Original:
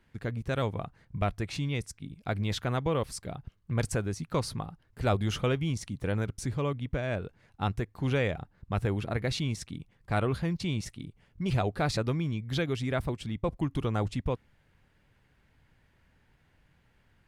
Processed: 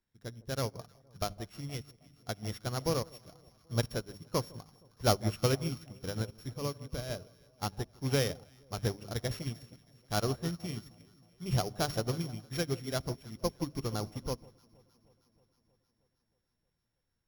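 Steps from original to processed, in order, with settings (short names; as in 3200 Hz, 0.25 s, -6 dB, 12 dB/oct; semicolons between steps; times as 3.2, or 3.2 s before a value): sample sorter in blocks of 8 samples; notches 50/100/150/200/250/300 Hz; echo with dull and thin repeats by turns 0.157 s, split 1000 Hz, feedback 80%, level -10.5 dB; on a send at -18.5 dB: reverb RT60 0.55 s, pre-delay 58 ms; on the sum: upward expander 2.5:1, over -38 dBFS; gain +2.5 dB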